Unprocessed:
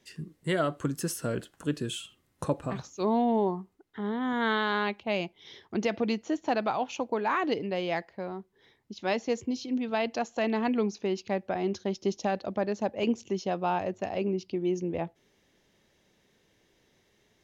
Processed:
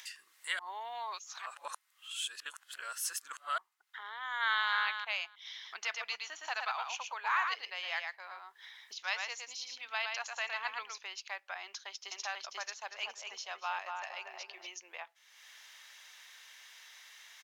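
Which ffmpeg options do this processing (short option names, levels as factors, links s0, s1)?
-filter_complex "[0:a]asplit=2[s0][s1];[s1]afade=t=in:st=4.2:d=0.01,afade=t=out:st=4.73:d=0.01,aecho=0:1:310|620:0.421697|0.0421697[s2];[s0][s2]amix=inputs=2:normalize=0,asettb=1/sr,asplit=3[s3][s4][s5];[s3]atrim=end=5.404[s6];[s4]atrim=start=5.4:end=10.98,asetpts=PTS-STARTPTS,afade=t=in:d=0.004:c=qsin,afade=t=out:st=5.576:d=0.004:c=qsin,aecho=1:1:114:0.596,atrim=end_sample=246078[s7];[s5]atrim=start=10.976[s8];[s6][s7]acrossfade=d=0.004:c1=hsin:c2=qsin[s9];[s9][s8]acrossfade=d=0.004:c1=qsin:c2=hsin,asplit=2[s10][s11];[s11]afade=t=in:st=11.62:d=0.01,afade=t=out:st=12.24:d=0.01,aecho=0:1:490|980|1470:1|0.2|0.04[s12];[s10][s12]amix=inputs=2:normalize=0,asplit=3[s13][s14][s15];[s13]afade=t=out:st=12.87:d=0.02[s16];[s14]asplit=2[s17][s18];[s18]adelay=236,lowpass=f=1800:p=1,volume=0.708,asplit=2[s19][s20];[s20]adelay=236,lowpass=f=1800:p=1,volume=0.29,asplit=2[s21][s22];[s22]adelay=236,lowpass=f=1800:p=1,volume=0.29,asplit=2[s23][s24];[s24]adelay=236,lowpass=f=1800:p=1,volume=0.29[s25];[s17][s19][s21][s23][s25]amix=inputs=5:normalize=0,afade=t=in:st=12.87:d=0.02,afade=t=out:st=14.7:d=0.02[s26];[s15]afade=t=in:st=14.7:d=0.02[s27];[s16][s26][s27]amix=inputs=3:normalize=0,asplit=3[s28][s29][s30];[s28]atrim=end=0.592[s31];[s29]atrim=start=0.588:end=3.582,asetpts=PTS-STARTPTS,areverse[s32];[s30]atrim=start=3.578[s33];[s31][s32]acrossfade=d=0.004:c1=hsin:c2=hsin[s34];[s34][s33]acrossfade=d=0.004:c1=hsin:c2=hsin,highpass=f=1100:w=0.5412,highpass=f=1100:w=1.3066,acompressor=mode=upward:threshold=0.01:ratio=2.5"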